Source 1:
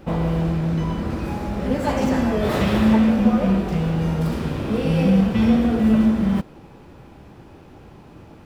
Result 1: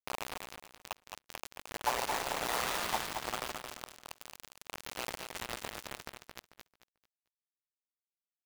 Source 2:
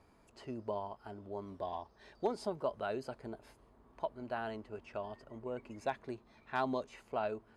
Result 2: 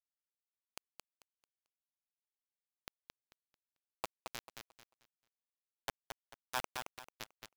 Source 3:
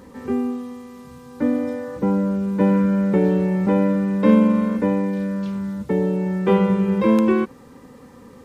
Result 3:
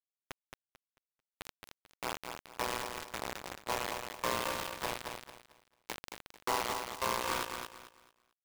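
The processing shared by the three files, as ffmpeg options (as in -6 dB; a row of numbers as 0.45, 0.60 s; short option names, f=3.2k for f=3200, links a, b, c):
-filter_complex "[0:a]agate=range=-33dB:threshold=-45dB:ratio=3:detection=peak,asplit=2[a][b];[b]acompressor=threshold=-34dB:ratio=4,volume=-2dB[c];[a][c]amix=inputs=2:normalize=0,highpass=f=900:t=q:w=1.7,tremolo=f=120:d=0.857,acrusher=bits=3:mix=0:aa=0.000001,asplit=2[d][e];[e]aecho=0:1:221|442|663|884:0.501|0.14|0.0393|0.011[f];[d][f]amix=inputs=2:normalize=0,volume=-8dB"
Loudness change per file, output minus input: -18.5, -6.5, -17.5 LU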